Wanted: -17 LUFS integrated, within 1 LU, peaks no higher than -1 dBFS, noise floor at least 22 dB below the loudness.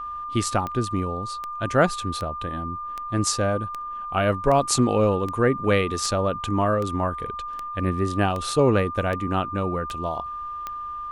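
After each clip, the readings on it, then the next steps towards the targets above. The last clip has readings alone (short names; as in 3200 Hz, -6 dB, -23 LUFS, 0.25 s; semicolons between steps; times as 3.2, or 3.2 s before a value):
clicks 14; steady tone 1200 Hz; tone level -30 dBFS; loudness -24.5 LUFS; peak -7.0 dBFS; loudness target -17.0 LUFS
-> de-click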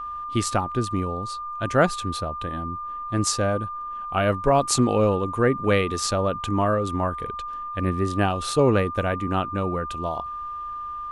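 clicks 0; steady tone 1200 Hz; tone level -30 dBFS
-> notch 1200 Hz, Q 30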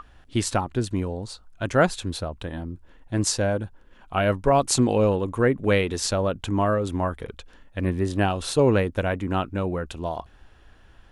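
steady tone none; loudness -24.5 LUFS; peak -7.5 dBFS; loudness target -17.0 LUFS
-> gain +7.5 dB; limiter -1 dBFS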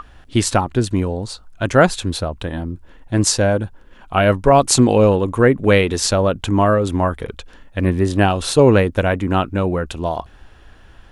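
loudness -17.0 LUFS; peak -1.0 dBFS; noise floor -45 dBFS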